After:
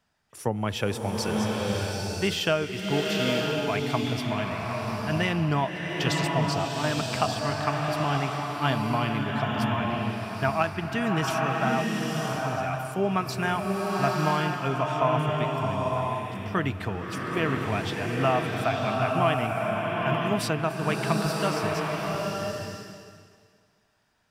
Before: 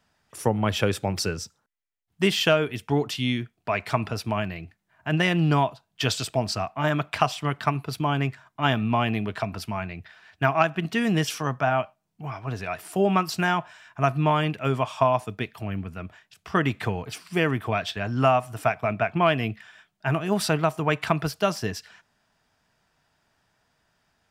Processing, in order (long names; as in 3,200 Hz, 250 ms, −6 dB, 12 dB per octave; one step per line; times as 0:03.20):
slow-attack reverb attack 960 ms, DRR −1 dB
level −4.5 dB